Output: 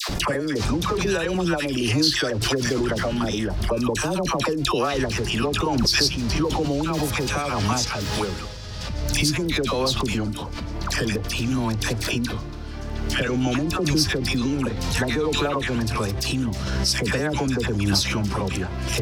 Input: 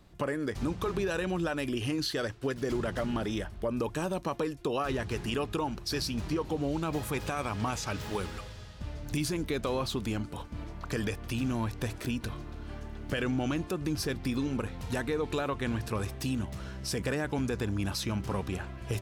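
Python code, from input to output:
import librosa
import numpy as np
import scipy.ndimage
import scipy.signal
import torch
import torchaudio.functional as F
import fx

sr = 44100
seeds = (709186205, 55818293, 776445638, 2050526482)

y = fx.peak_eq(x, sr, hz=5100.0, db=8.5, octaves=0.79)
y = fx.dispersion(y, sr, late='lows', ms=90.0, hz=1000.0)
y = fx.pre_swell(y, sr, db_per_s=26.0)
y = y * librosa.db_to_amplitude(7.0)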